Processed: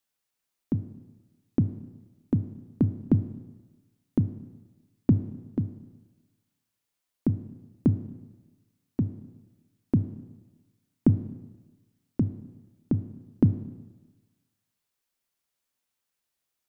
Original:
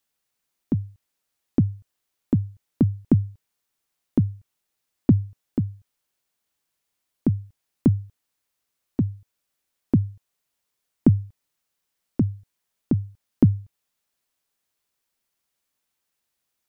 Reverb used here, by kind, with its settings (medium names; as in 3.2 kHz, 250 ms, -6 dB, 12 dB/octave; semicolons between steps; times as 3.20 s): Schroeder reverb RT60 1.2 s, combs from 25 ms, DRR 11 dB; trim -4 dB